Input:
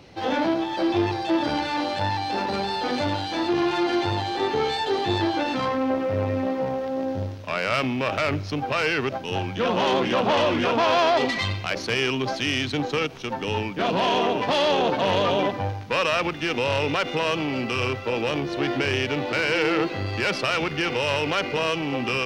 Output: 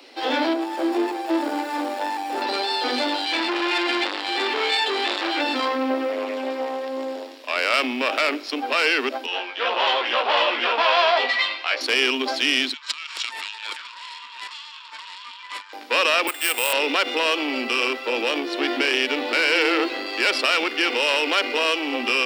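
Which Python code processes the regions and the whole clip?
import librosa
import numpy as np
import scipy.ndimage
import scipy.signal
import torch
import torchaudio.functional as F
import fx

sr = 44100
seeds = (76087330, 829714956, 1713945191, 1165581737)

y = fx.chain(x, sr, fx.median_filter(points=15),
    fx.high_shelf(hz=3100.0, db=-7.5), at=(0.53, 2.42))
y = fx.chain(y, sr, fx.peak_eq(hz=2300.0, db=9.0, octaves=0.8),
    fx.transformer_sat(knee_hz=1800.0), at=(3.25, 5.41))
y = fx.chain(y, sr, fx.peak_eq(hz=130.0, db=-12.5, octaves=1.5),
    fx.notch(hz=1400.0, q=8.1),
    fx.doppler_dist(depth_ms=0.24), at=(6.12, 7.56))
y = fx.chain(y, sr, fx.bandpass_edges(low_hz=650.0, high_hz=3700.0),
    fx.doubler(ms=17.0, db=-4), at=(9.26, 11.81))
y = fx.chain(y, sr, fx.over_compress(threshold_db=-34.0, ratio=-1.0),
    fx.brickwall_bandpass(low_hz=880.0, high_hz=7900.0),
    fx.doppler_dist(depth_ms=0.25), at=(12.73, 15.73))
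y = fx.chain(y, sr, fx.highpass(hz=600.0, slope=12),
    fx.resample_bad(factor=4, down='none', up='hold'), at=(16.27, 16.73))
y = scipy.signal.sosfilt(scipy.signal.butter(16, 240.0, 'highpass', fs=sr, output='sos'), y)
y = fx.high_shelf(y, sr, hz=2100.0, db=9.5)
y = fx.notch(y, sr, hz=6200.0, q=5.1)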